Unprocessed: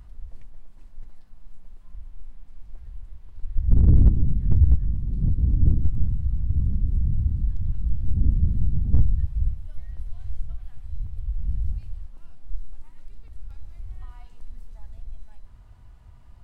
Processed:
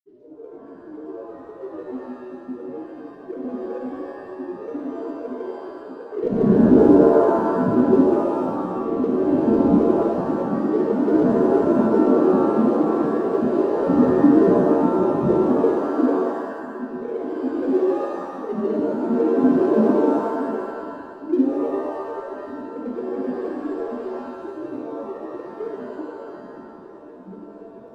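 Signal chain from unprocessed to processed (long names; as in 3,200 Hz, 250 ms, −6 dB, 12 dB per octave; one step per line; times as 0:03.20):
parametric band 130 Hz +12 dB 2.9 octaves
automatic gain control gain up to 7 dB
frequency shifter −380 Hz
high-frequency loss of the air 120 metres
time stretch by phase vocoder 1.7×
granular cloud, pitch spread up and down by 7 semitones
notch filter 520 Hz, Q 12
in parallel at −8 dB: dead-zone distortion −30 dBFS
on the sum: reverb with rising layers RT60 1.3 s, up +7 semitones, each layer −2 dB, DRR 1.5 dB
level −6.5 dB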